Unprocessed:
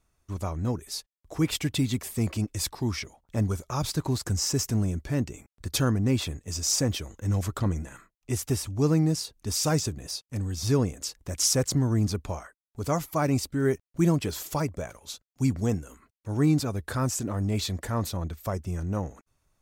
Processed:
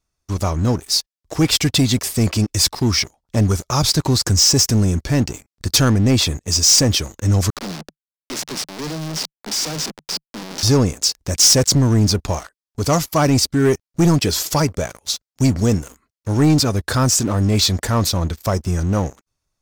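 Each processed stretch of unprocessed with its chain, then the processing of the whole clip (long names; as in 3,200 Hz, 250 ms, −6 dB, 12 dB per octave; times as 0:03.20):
0:07.50–0:10.63: hold until the input has moved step −27.5 dBFS + Butterworth high-pass 150 Hz 96 dB per octave + tube saturation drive 36 dB, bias 0.25
whole clip: parametric band 5,100 Hz +8.5 dB 0.94 octaves; leveller curve on the samples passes 3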